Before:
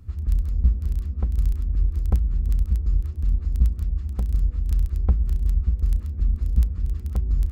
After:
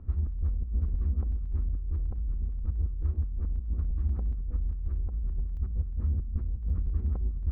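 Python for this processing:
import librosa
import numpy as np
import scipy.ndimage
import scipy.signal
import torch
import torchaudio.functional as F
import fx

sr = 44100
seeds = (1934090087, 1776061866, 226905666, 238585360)

y = scipy.signal.sosfilt(scipy.signal.butter(2, 1100.0, 'lowpass', fs=sr, output='sos'), x)
y = fx.peak_eq(y, sr, hz=120.0, db=fx.steps((0.0, -9.5), (5.57, 2.5), (6.7, -5.0)), octaves=0.74)
y = fx.over_compress(y, sr, threshold_db=-27.0, ratio=-1.0)
y = F.gain(torch.from_numpy(y), -2.0).numpy()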